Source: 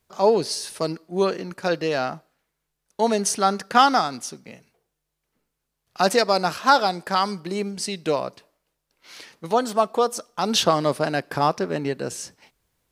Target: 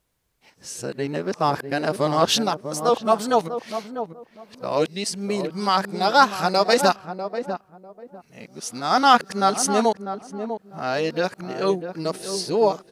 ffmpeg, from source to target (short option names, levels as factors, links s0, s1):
-filter_complex "[0:a]areverse,dynaudnorm=f=510:g=11:m=3.76,asplit=2[s0][s1];[s1]adelay=647,lowpass=f=800:p=1,volume=0.422,asplit=2[s2][s3];[s3]adelay=647,lowpass=f=800:p=1,volume=0.24,asplit=2[s4][s5];[s5]adelay=647,lowpass=f=800:p=1,volume=0.24[s6];[s0][s2][s4][s6]amix=inputs=4:normalize=0,volume=0.891"